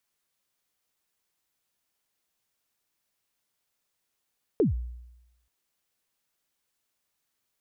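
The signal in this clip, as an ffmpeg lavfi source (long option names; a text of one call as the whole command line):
ffmpeg -f lavfi -i "aevalsrc='0.141*pow(10,-3*t/0.94)*sin(2*PI*(490*0.137/log(60/490)*(exp(log(60/490)*min(t,0.137)/0.137)-1)+60*max(t-0.137,0)))':duration=0.88:sample_rate=44100" out.wav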